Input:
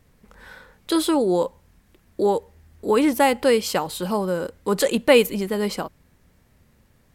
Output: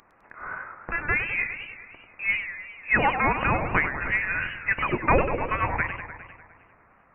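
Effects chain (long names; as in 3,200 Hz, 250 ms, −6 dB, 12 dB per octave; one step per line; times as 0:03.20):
one scale factor per block 7 bits
high-pass filter 1,100 Hz 12 dB per octave
spectral tilt +4.5 dB per octave
brickwall limiter −12.5 dBFS, peak gain reduction 13 dB
voice inversion scrambler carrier 3,000 Hz
feedback echo with a swinging delay time 101 ms, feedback 67%, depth 219 cents, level −9 dB
level +8 dB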